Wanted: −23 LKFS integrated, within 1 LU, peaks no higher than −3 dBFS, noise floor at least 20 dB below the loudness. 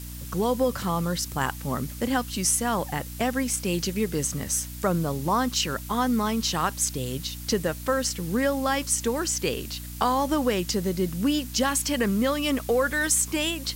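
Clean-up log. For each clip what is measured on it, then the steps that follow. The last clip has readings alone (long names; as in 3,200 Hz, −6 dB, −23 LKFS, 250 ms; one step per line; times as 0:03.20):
mains hum 60 Hz; hum harmonics up to 300 Hz; level of the hum −36 dBFS; background noise floor −38 dBFS; target noise floor −46 dBFS; integrated loudness −25.5 LKFS; sample peak −9.0 dBFS; target loudness −23.0 LKFS
→ mains-hum notches 60/120/180/240/300 Hz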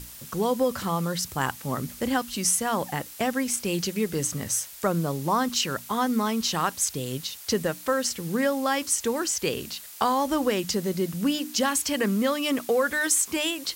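mains hum none found; background noise floor −43 dBFS; target noise floor −46 dBFS
→ noise reduction from a noise print 6 dB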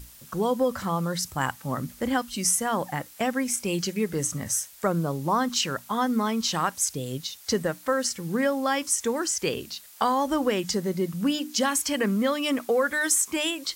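background noise floor −49 dBFS; integrated loudness −26.0 LKFS; sample peak −9.5 dBFS; target loudness −23.0 LKFS
→ level +3 dB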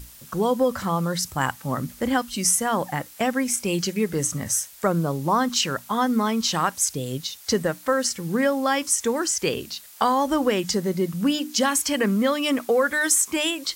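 integrated loudness −23.0 LKFS; sample peak −6.5 dBFS; background noise floor −46 dBFS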